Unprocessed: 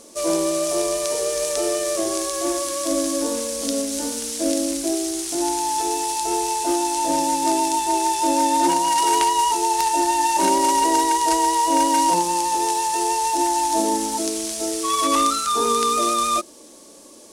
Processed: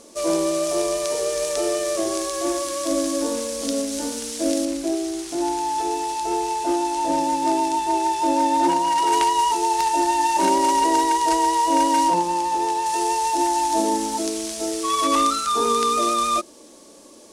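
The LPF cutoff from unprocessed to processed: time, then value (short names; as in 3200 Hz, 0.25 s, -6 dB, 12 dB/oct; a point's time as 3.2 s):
LPF 6 dB/oct
6600 Hz
from 4.65 s 2800 Hz
from 9.12 s 5100 Hz
from 12.08 s 2500 Hz
from 12.86 s 6400 Hz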